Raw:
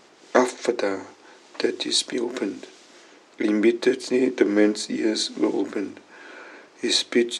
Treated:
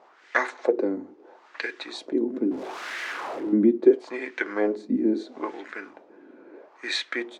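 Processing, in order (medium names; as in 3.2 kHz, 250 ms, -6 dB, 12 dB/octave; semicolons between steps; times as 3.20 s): 2.51–3.53 s: one-bit comparator; wah-wah 0.75 Hz 230–1900 Hz, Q 2.3; trim +5 dB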